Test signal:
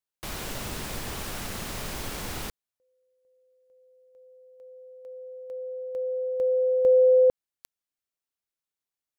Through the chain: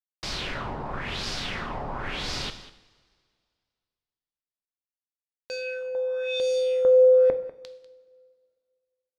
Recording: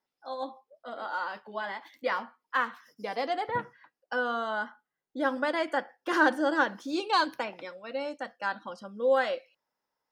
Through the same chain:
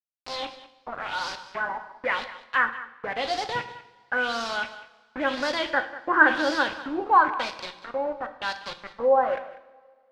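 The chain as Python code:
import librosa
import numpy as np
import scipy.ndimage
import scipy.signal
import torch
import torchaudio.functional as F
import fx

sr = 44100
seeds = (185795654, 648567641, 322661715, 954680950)

p1 = fx.quant_dither(x, sr, seeds[0], bits=6, dither='none')
p2 = fx.filter_lfo_lowpass(p1, sr, shape='sine', hz=0.96, low_hz=820.0, high_hz=5000.0, q=3.3)
p3 = p2 + fx.echo_single(p2, sr, ms=195, db=-16.5, dry=0)
y = fx.rev_double_slope(p3, sr, seeds[1], early_s=0.71, late_s=2.2, knee_db=-17, drr_db=8.5)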